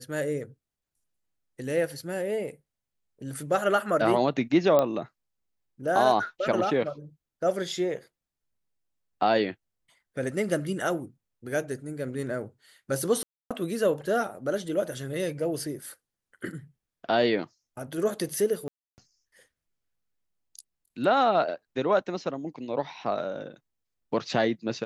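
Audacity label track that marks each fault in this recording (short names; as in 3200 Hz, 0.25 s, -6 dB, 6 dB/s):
4.790000	4.790000	pop -11 dBFS
13.230000	13.510000	gap 0.276 s
18.680000	18.980000	gap 0.299 s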